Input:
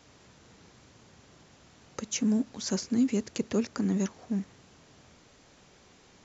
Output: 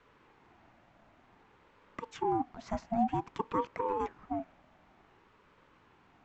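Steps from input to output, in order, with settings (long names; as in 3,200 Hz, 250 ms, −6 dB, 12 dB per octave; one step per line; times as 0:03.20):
three-way crossover with the lows and the highs turned down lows −13 dB, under 170 Hz, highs −23 dB, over 2,500 Hz
ring modulator whose carrier an LFO sweeps 580 Hz, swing 25%, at 0.54 Hz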